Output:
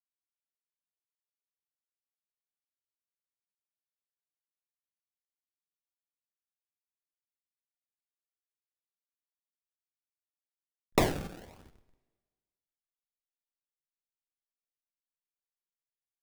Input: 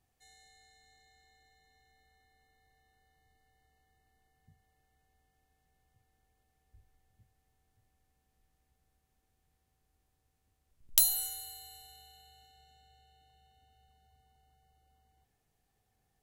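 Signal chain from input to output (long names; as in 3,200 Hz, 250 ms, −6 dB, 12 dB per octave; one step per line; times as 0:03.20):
mains-hum notches 50/100 Hz
in parallel at +1.5 dB: downward compressor 10 to 1, threshold −52 dBFS, peak gain reduction 31.5 dB
on the sum: slack as between gear wheels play −33.5 dBFS
sample-and-hold swept by an LFO 30×, swing 100% 1 Hz
coupled-rooms reverb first 0.44 s, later 1.6 s, from −18 dB, DRR 12 dB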